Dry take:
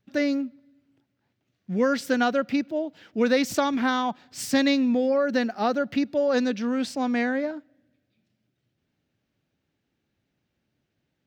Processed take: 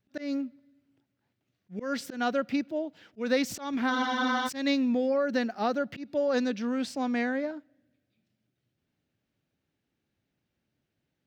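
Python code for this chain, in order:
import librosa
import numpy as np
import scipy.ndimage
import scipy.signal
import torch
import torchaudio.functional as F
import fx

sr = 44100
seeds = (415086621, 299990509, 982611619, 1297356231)

y = fx.auto_swell(x, sr, attack_ms=171.0)
y = fx.spec_freeze(y, sr, seeds[0], at_s=3.93, hold_s=0.54)
y = y * 10.0 ** (-4.0 / 20.0)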